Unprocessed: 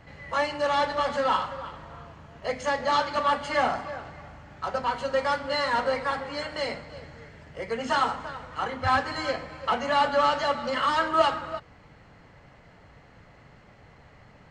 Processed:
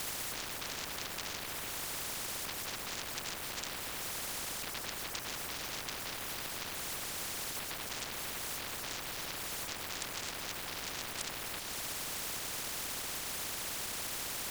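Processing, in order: full-wave rectifier; LPF 1200 Hz 12 dB/oct; bit-crush 10-bit; whisperiser; in parallel at -9.5 dB: sine folder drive 17 dB, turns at -13.5 dBFS; on the sum: compressor 2:1, threshold -42 dBFS, peak gain reduction 13.5 dB; spectral compressor 10:1; gain +4 dB

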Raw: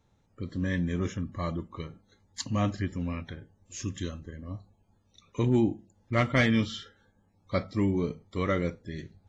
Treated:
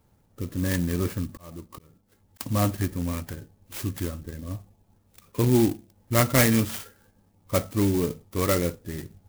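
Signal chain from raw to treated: dynamic EQ 190 Hz, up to -4 dB, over -45 dBFS, Q 2.4; 1.29–2.41 auto swell 0.602 s; clock jitter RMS 0.084 ms; gain +5 dB

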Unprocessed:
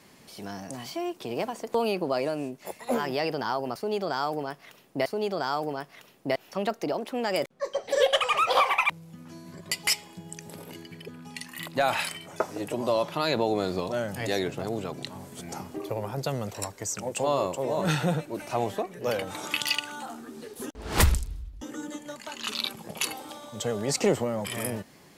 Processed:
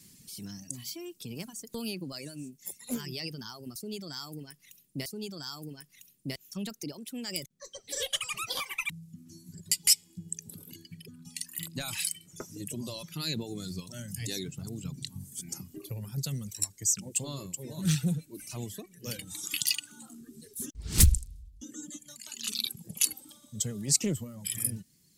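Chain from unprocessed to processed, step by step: 14.84–15.32 tone controls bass +6 dB, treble -1 dB; reverb removal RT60 2 s; EQ curve 170 Hz 0 dB, 340 Hz -10 dB, 710 Hz -26 dB, 7800 Hz +6 dB; in parallel at -11 dB: soft clip -16 dBFS, distortion -15 dB; on the sum: Doppler distortion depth 0.39 ms

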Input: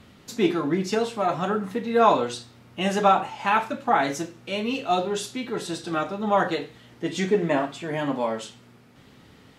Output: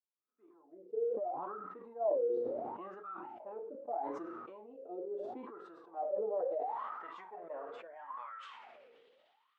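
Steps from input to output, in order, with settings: opening faded in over 2.85 s; spectral gain 3.05–3.4, 380–1200 Hz -16 dB; transient shaper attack +3 dB, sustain -2 dB; wah 0.75 Hz 460–1300 Hz, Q 20; high shelf 9000 Hz +11.5 dB; band-pass sweep 350 Hz -> 3200 Hz, 5.52–9.1; sustainer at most 26 dB/s; gain +6.5 dB

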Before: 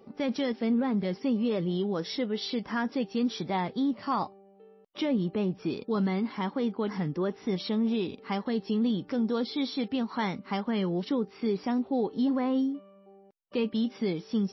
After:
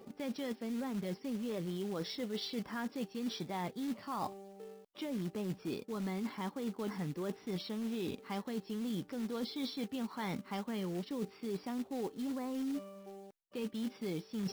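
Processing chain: short-mantissa float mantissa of 2-bit; reverse; compressor 12:1, threshold -40 dBFS, peak gain reduction 17.5 dB; reverse; gain +4.5 dB

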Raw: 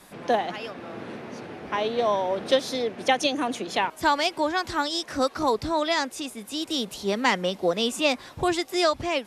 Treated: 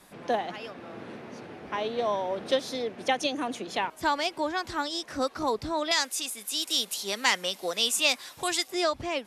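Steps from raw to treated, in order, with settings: 5.91–8.68 tilt +4 dB/oct; gain -4.5 dB

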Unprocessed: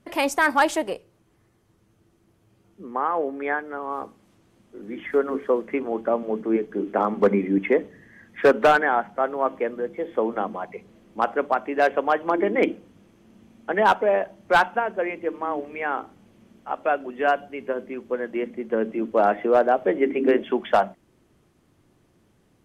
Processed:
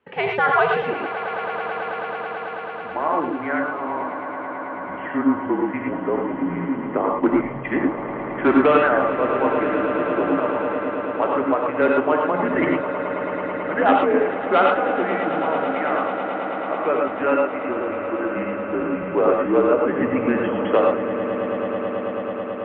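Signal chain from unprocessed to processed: mistuned SSB -160 Hz 430–3300 Hz; swelling echo 0.109 s, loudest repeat 8, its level -15 dB; non-linear reverb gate 0.14 s rising, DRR 0.5 dB; 7.01–7.76 three-band expander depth 70%

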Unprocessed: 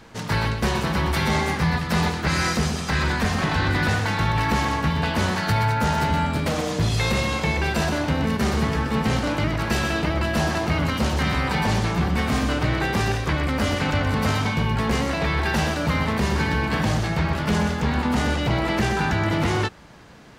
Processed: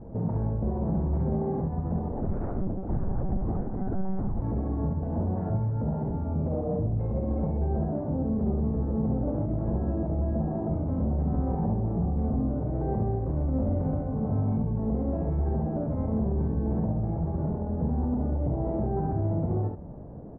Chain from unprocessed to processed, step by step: Chebyshev low-pass 690 Hz, order 3; low shelf 410 Hz +7.5 dB; compressor, threshold -17 dBFS, peak gain reduction 6 dB; limiter -23 dBFS, peak gain reduction 12 dB; early reflections 46 ms -6.5 dB, 69 ms -4.5 dB; 2.11–4.42 monotone LPC vocoder at 8 kHz 190 Hz

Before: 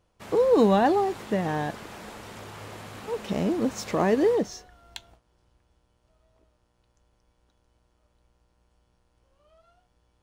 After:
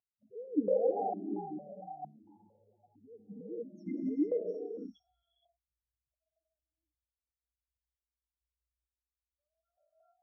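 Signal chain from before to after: loudest bins only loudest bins 2; non-linear reverb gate 0.49 s rising, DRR 0 dB; vowel sequencer 4.4 Hz

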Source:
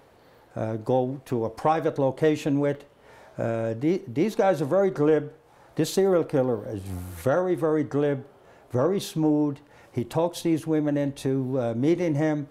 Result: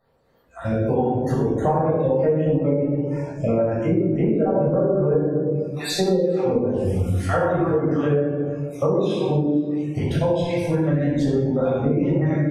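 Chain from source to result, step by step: random spectral dropouts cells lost 49%; treble ducked by the level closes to 1000 Hz, closed at -19.5 dBFS; shoebox room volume 870 m³, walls mixed, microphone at 6.3 m; compressor 5:1, threshold -17 dBFS, peak gain reduction 12.5 dB; spectral noise reduction 19 dB; on a send: tape echo 0.439 s, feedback 62%, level -21 dB, low-pass 2200 Hz

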